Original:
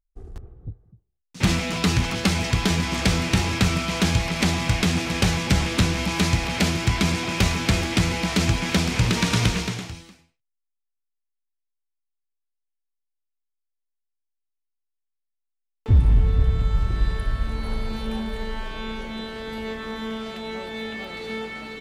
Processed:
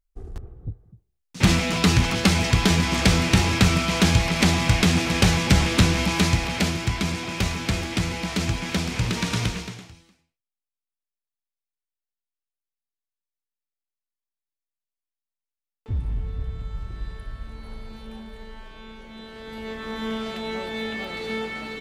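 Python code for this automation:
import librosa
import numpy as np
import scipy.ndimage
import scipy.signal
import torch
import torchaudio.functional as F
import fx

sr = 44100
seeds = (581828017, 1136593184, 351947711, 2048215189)

y = fx.gain(x, sr, db=fx.line((6.0, 2.5), (7.0, -4.0), (9.41, -4.0), (9.95, -11.0), (19.0, -11.0), (20.1, 2.0)))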